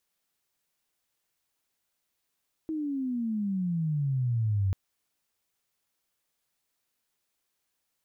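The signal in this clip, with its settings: gliding synth tone sine, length 2.04 s, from 322 Hz, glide -21.5 st, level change +6 dB, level -23 dB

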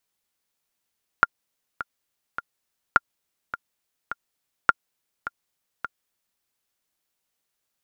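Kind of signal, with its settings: metronome 104 bpm, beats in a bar 3, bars 3, 1.4 kHz, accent 14.5 dB -1.5 dBFS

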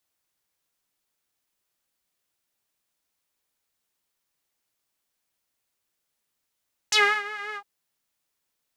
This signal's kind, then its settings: synth patch with vibrato G#4, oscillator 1 saw, oscillator 2 square, interval 0 st, detune 18 cents, sub -24.5 dB, filter bandpass, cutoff 840 Hz, Q 3.1, filter envelope 3 oct, filter decay 0.08 s, filter sustain 35%, attack 5.6 ms, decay 0.30 s, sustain -18.5 dB, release 0.07 s, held 0.64 s, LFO 5.6 Hz, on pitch 48 cents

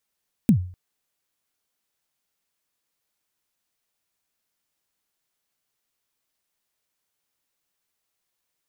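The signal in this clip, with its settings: kick drum length 0.25 s, from 250 Hz, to 90 Hz, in 91 ms, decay 0.45 s, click on, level -9 dB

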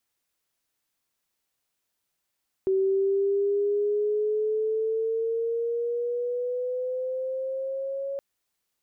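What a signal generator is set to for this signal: gliding synth tone sine, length 5.52 s, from 381 Hz, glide +6.5 st, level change -8.5 dB, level -20 dB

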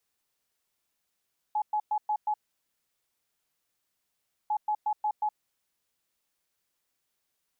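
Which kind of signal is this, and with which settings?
beep pattern sine 847 Hz, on 0.07 s, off 0.11 s, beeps 5, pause 2.16 s, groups 2, -24.5 dBFS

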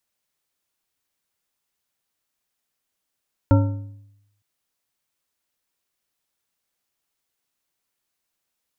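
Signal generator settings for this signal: metal hit bar, length 0.91 s, lowest mode 102 Hz, modes 5, decay 0.88 s, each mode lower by 4.5 dB, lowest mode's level -10.5 dB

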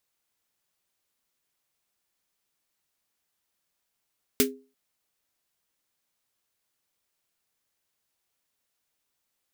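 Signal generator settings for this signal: snare drum length 0.34 s, tones 260 Hz, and 410 Hz, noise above 1.4 kHz, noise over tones 2 dB, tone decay 0.34 s, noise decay 0.13 s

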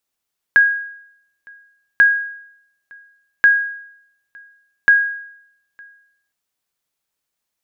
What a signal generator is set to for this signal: sonar ping 1.64 kHz, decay 0.74 s, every 1.44 s, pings 4, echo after 0.91 s, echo -30 dB -4.5 dBFS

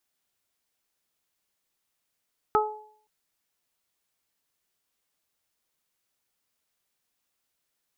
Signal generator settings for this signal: additive tone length 0.52 s, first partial 427 Hz, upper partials 1.5/2 dB, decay 0.54 s, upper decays 0.58/0.23 s, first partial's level -21 dB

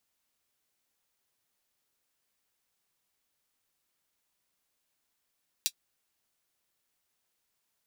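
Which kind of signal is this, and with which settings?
closed hi-hat, high-pass 3.7 kHz, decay 0.07 s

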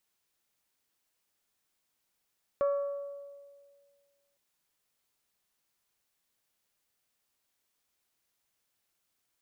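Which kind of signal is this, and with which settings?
glass hit bell, length 1.76 s, lowest mode 565 Hz, decay 1.86 s, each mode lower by 10.5 dB, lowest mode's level -23.5 dB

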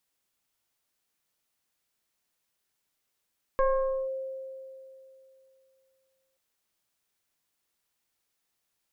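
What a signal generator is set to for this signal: FM tone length 2.78 s, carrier 530 Hz, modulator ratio 1.03, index 1.1, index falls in 0.50 s linear, decay 2.86 s, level -19.5 dB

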